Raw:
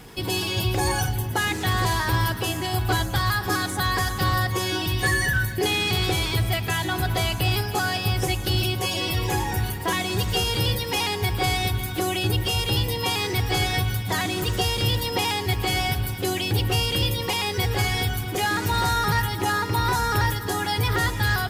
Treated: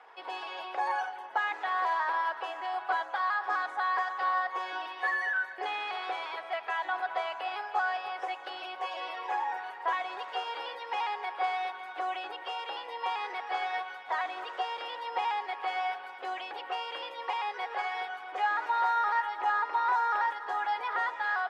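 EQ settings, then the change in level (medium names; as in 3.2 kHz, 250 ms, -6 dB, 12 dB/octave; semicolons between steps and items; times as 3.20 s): high-pass 690 Hz 24 dB/octave; low-pass 1.3 kHz 12 dB/octave; 0.0 dB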